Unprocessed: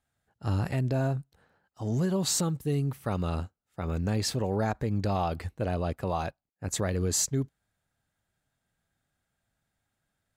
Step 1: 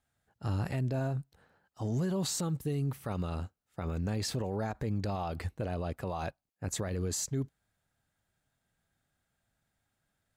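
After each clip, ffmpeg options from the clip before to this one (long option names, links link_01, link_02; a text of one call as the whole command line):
ffmpeg -i in.wav -af "alimiter=level_in=1.5dB:limit=-24dB:level=0:latency=1:release=62,volume=-1.5dB" out.wav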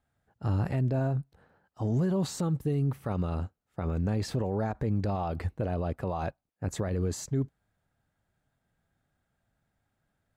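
ffmpeg -i in.wav -af "highshelf=frequency=2300:gain=-11,volume=4.5dB" out.wav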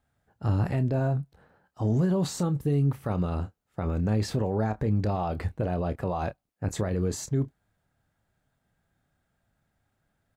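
ffmpeg -i in.wav -filter_complex "[0:a]asplit=2[link_01][link_02];[link_02]adelay=28,volume=-12dB[link_03];[link_01][link_03]amix=inputs=2:normalize=0,volume=2.5dB" out.wav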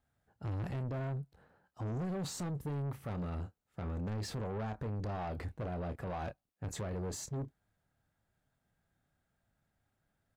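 ffmpeg -i in.wav -af "asoftclip=type=tanh:threshold=-29dB,volume=-5.5dB" out.wav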